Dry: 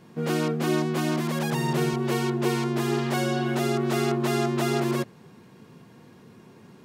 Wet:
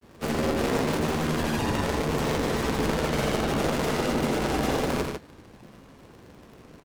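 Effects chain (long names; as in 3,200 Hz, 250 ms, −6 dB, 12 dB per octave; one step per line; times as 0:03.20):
sub-harmonics by changed cycles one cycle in 3, inverted
brickwall limiter −17 dBFS, peak gain reduction 5 dB
granular cloud
on a send: loudspeakers that aren't time-aligned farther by 29 metres −6 dB, 51 metres −6 dB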